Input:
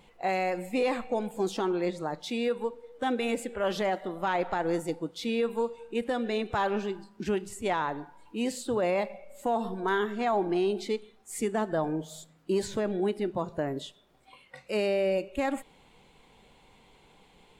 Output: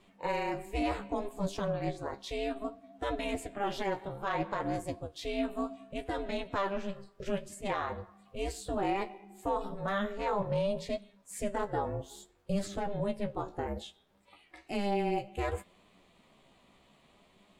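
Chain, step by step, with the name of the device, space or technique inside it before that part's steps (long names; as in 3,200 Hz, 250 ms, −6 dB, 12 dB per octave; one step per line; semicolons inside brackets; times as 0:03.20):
alien voice (ring modulation 200 Hz; flanger 0.63 Hz, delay 9.7 ms, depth 6.8 ms, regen +35%)
level +2 dB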